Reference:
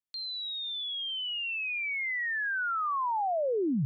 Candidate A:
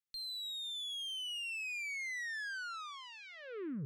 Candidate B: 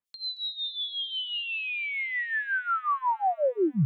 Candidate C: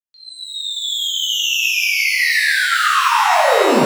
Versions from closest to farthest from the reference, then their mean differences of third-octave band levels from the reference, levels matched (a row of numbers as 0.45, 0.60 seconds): B, A, C; 3.5, 9.0, 15.0 decibels